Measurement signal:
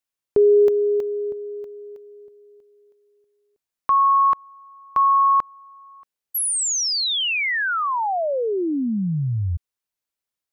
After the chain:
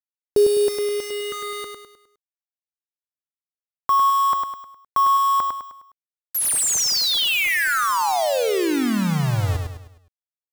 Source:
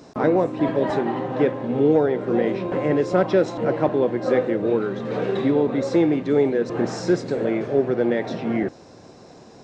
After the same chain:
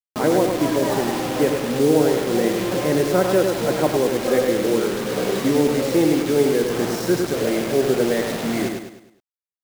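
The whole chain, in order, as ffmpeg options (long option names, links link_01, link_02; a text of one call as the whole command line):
ffmpeg -i in.wav -filter_complex "[0:a]acrusher=bits=4:mix=0:aa=0.000001,asplit=2[link_01][link_02];[link_02]aecho=0:1:103|206|309|412|515:0.562|0.236|0.0992|0.0417|0.0175[link_03];[link_01][link_03]amix=inputs=2:normalize=0" out.wav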